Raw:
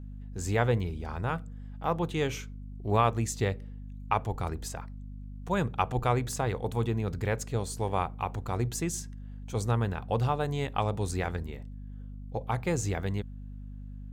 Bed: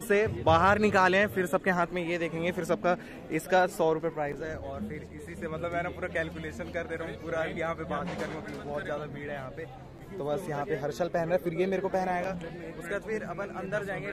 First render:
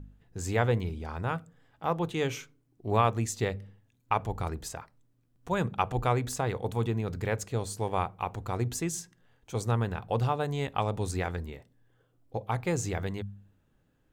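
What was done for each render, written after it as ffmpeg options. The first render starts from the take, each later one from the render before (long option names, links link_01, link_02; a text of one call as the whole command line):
ffmpeg -i in.wav -af "bandreject=frequency=50:width_type=h:width=4,bandreject=frequency=100:width_type=h:width=4,bandreject=frequency=150:width_type=h:width=4,bandreject=frequency=200:width_type=h:width=4,bandreject=frequency=250:width_type=h:width=4" out.wav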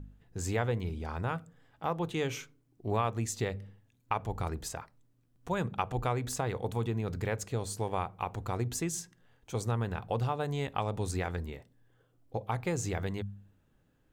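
ffmpeg -i in.wav -af "acompressor=threshold=-30dB:ratio=2" out.wav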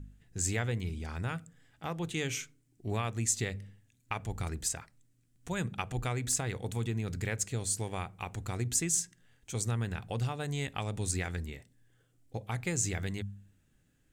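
ffmpeg -i in.wav -af "equalizer=frequency=500:width_type=o:width=1:gain=-5,equalizer=frequency=1000:width_type=o:width=1:gain=-8,equalizer=frequency=2000:width_type=o:width=1:gain=4,equalizer=frequency=8000:width_type=o:width=1:gain=10" out.wav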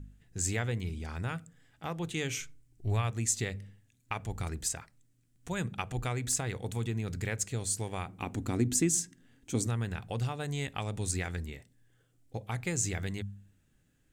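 ffmpeg -i in.wav -filter_complex "[0:a]asplit=3[link_01][link_02][link_03];[link_01]afade=type=out:start_time=2.37:duration=0.02[link_04];[link_02]asubboost=boost=9:cutoff=79,afade=type=in:start_time=2.37:duration=0.02,afade=type=out:start_time=3.1:duration=0.02[link_05];[link_03]afade=type=in:start_time=3.1:duration=0.02[link_06];[link_04][link_05][link_06]amix=inputs=3:normalize=0,asettb=1/sr,asplit=3[link_07][link_08][link_09];[link_07]atrim=end=8.084[link_10];[link_08]atrim=start=8.08:end=9.67,asetpts=PTS-STARTPTS,afade=type=in:duration=0.004:curve=qsin,afade=type=out:start_time=1.586:duration=0.004:curve=qsin,equalizer=frequency=270:width_type=o:width=0.87:gain=15[link_11];[link_09]atrim=start=9.666[link_12];[link_10][link_11]acrossfade=duration=0.004:curve1=hsin:curve2=qsin[link_13];[link_13][link_12]acrossfade=duration=0.004:curve1=qsin:curve2=hsin" out.wav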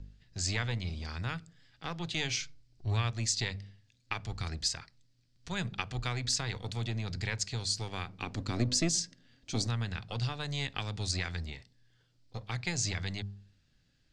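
ffmpeg -i in.wav -filter_complex "[0:a]lowpass=frequency=4700:width_type=q:width=4.4,acrossover=split=200|1100|2700[link_01][link_02][link_03][link_04];[link_02]aeval=exprs='max(val(0),0)':channel_layout=same[link_05];[link_01][link_05][link_03][link_04]amix=inputs=4:normalize=0" out.wav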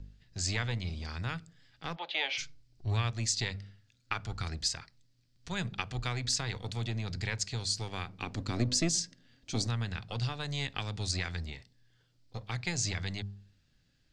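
ffmpeg -i in.wav -filter_complex "[0:a]asplit=3[link_01][link_02][link_03];[link_01]afade=type=out:start_time=1.95:duration=0.02[link_04];[link_02]highpass=frequency=380:width=0.5412,highpass=frequency=380:width=1.3066,equalizer=frequency=390:width_type=q:width=4:gain=-8,equalizer=frequency=570:width_type=q:width=4:gain=9,equalizer=frequency=860:width_type=q:width=4:gain=8,equalizer=frequency=2200:width_type=q:width=4:gain=4,equalizer=frequency=3200:width_type=q:width=4:gain=4,lowpass=frequency=3900:width=0.5412,lowpass=frequency=3900:width=1.3066,afade=type=in:start_time=1.95:duration=0.02,afade=type=out:start_time=2.37:duration=0.02[link_05];[link_03]afade=type=in:start_time=2.37:duration=0.02[link_06];[link_04][link_05][link_06]amix=inputs=3:normalize=0,asettb=1/sr,asplit=3[link_07][link_08][link_09];[link_07]atrim=end=3.544[link_10];[link_08]atrim=start=3.54:end=4.42,asetpts=PTS-STARTPTS,afade=type=in:duration=0.004:curve=qsin,afade=type=out:start_time=0.876:duration=0.004:curve=qsin,equalizer=frequency=1400:width_type=o:width=0.22:gain=11[link_11];[link_09]atrim=start=4.416[link_12];[link_10][link_11]acrossfade=duration=0.004:curve1=hsin:curve2=qsin[link_13];[link_13][link_12]acrossfade=duration=0.004:curve1=qsin:curve2=hsin" out.wav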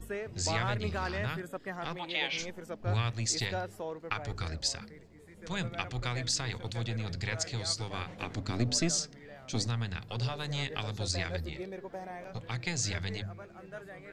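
ffmpeg -i in.wav -i bed.wav -filter_complex "[1:a]volume=-13dB[link_01];[0:a][link_01]amix=inputs=2:normalize=0" out.wav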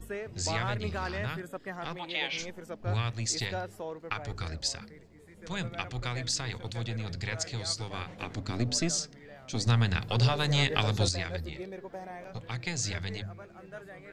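ffmpeg -i in.wav -filter_complex "[0:a]asplit=3[link_01][link_02][link_03];[link_01]atrim=end=9.672[link_04];[link_02]atrim=start=9.668:end=11.092,asetpts=PTS-STARTPTS,volume=8.5dB[link_05];[link_03]atrim=start=11.088[link_06];[link_04][link_05]acrossfade=duration=0.004:curve1=hsin:curve2=hsin[link_07];[link_07][link_06]acrossfade=duration=0.004:curve1=hsin:curve2=hsin" out.wav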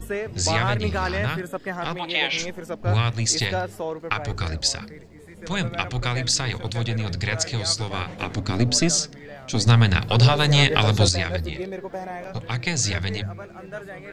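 ffmpeg -i in.wav -af "volume=9.5dB,alimiter=limit=-1dB:level=0:latency=1" out.wav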